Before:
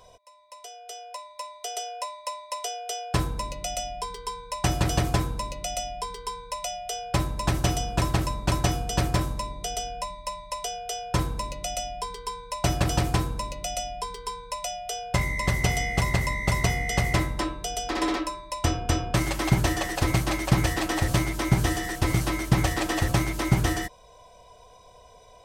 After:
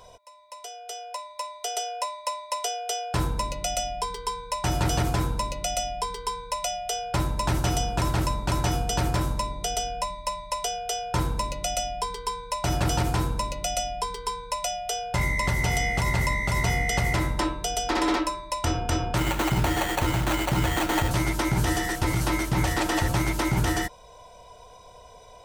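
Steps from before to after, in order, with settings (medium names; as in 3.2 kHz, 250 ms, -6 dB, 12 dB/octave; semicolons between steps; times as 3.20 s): peak limiter -17.5 dBFS, peak gain reduction 10 dB; 19.18–21.11 s: sample-rate reducer 5.1 kHz, jitter 0%; small resonant body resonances 900/1400 Hz, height 11 dB, ringing for 95 ms; trim +3 dB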